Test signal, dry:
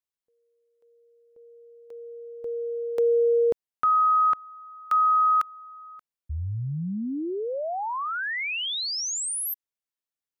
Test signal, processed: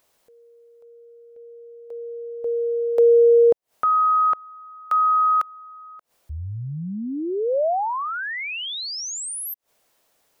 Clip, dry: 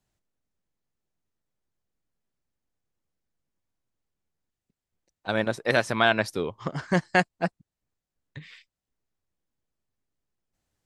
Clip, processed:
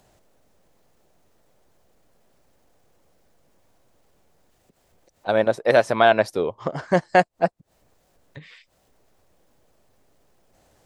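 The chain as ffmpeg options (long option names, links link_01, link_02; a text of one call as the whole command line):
ffmpeg -i in.wav -af "equalizer=frequency=600:width=0.98:gain=10.5,acompressor=mode=upward:threshold=-40dB:ratio=2.5:attack=0.34:release=94:knee=2.83:detection=peak,volume=-1dB" out.wav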